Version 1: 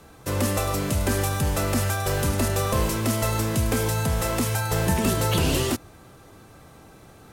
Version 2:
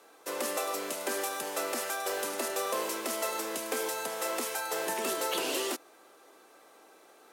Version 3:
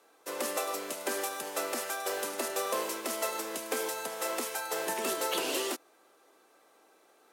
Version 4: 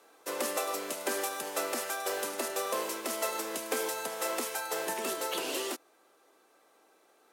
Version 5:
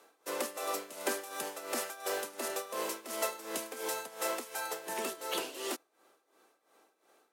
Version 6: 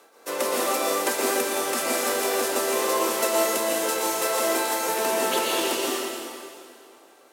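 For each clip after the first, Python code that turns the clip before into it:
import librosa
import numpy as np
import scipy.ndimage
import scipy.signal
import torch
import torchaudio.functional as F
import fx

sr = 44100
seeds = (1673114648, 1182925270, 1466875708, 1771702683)

y1 = scipy.signal.sosfilt(scipy.signal.butter(4, 350.0, 'highpass', fs=sr, output='sos'), x)
y1 = y1 * librosa.db_to_amplitude(-5.5)
y2 = fx.upward_expand(y1, sr, threshold_db=-43.0, expansion=1.5)
y2 = y2 * librosa.db_to_amplitude(1.0)
y3 = fx.rider(y2, sr, range_db=4, speed_s=0.5)
y4 = y3 * (1.0 - 0.79 / 2.0 + 0.79 / 2.0 * np.cos(2.0 * np.pi * 2.8 * (np.arange(len(y3)) / sr)))
y5 = fx.rev_plate(y4, sr, seeds[0], rt60_s=2.4, hf_ratio=0.9, predelay_ms=105, drr_db=-5.0)
y5 = y5 * librosa.db_to_amplitude(7.0)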